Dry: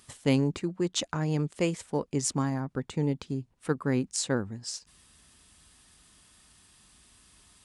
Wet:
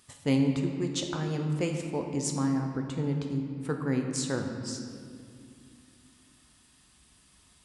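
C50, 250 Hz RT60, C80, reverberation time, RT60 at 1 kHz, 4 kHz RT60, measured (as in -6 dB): 4.5 dB, 3.8 s, 6.0 dB, 2.3 s, 2.0 s, 1.4 s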